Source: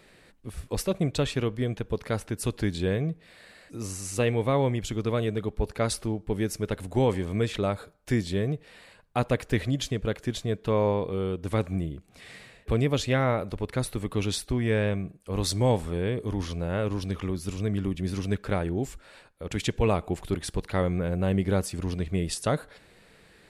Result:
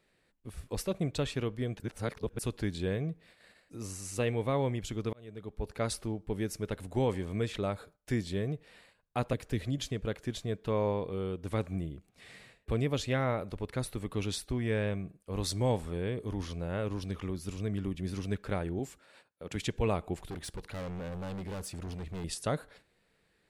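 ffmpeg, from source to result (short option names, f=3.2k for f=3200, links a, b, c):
-filter_complex "[0:a]asettb=1/sr,asplit=3[a][b][c];[a]atrim=end=9.334[d];[b]atrim=start=9.33:end=9.78,asetpts=PTS-STARTPTS,afade=t=in:d=0.004:c=qsin,afade=t=out:st=0.446:d=0.004:c=qsin,acrossover=split=420|3000[e][f][g];[f]acompressor=threshold=-41dB:ratio=3:attack=3.2:release=140:knee=2.83:detection=peak[h];[e][h][g]amix=inputs=3:normalize=0[i];[c]atrim=start=9.776[j];[d][i]acrossfade=d=0.004:c1=hsin:c2=qsin[k];[k][j]acrossfade=d=0.004:c1=qsin:c2=hsin,asettb=1/sr,asplit=3[l][m][n];[l]atrim=end=18.794[o];[m]atrim=start=18.79:end=19.55,asetpts=PTS-STARTPTS,afade=t=in:d=0.004:c=qsin,afade=t=out:st=0.756:d=0.004:c=qsin,highpass=120[p];[n]atrim=start=19.546[q];[o][p]acrossfade=d=0.004:c1=hsin:c2=qsin[r];[r][q]acrossfade=d=0.004:c1=qsin:c2=hsin,asettb=1/sr,asplit=3[s][t][u];[s]atrim=end=20.254[v];[t]atrim=start=20.25:end=22.24,asetpts=PTS-STARTPTS,afade=t=in:d=0.004:c=qsin,afade=t=out:st=1.986:d=0.004:c=qsin,asoftclip=type=hard:threshold=-30.5dB[w];[u]atrim=start=22.236[x];[v][w]acrossfade=d=0.004:c1=hsin:c2=qsin[y];[y][x]acrossfade=d=0.004:c1=qsin:c2=hsin,asplit=4[z][aa][ab][ac];[z]atrim=end=1.802[ad];[aa]atrim=start=1.798:end=2.392,asetpts=PTS-STARTPTS,areverse[ae];[ab]atrim=start=2.388:end=5.13,asetpts=PTS-STARTPTS,afade=t=out:st=2.738:d=0.004:c=hsin[af];[ac]atrim=start=5.13,asetpts=PTS-STARTPTS,afade=t=in:d=0.68[ag];[ad][ae]acrossfade=d=0.004:c1=hsin:c2=hsin[ah];[af][ag]concat=n=2:v=0:a=1[ai];[ah][ai]acrossfade=d=0.004:c1=hsin:c2=hsin,agate=range=-10dB:threshold=-51dB:ratio=16:detection=peak,volume=-6dB"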